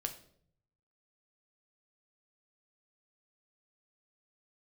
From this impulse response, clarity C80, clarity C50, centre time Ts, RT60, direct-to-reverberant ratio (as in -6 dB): 15.5 dB, 12.0 dB, 9 ms, 0.60 s, 5.5 dB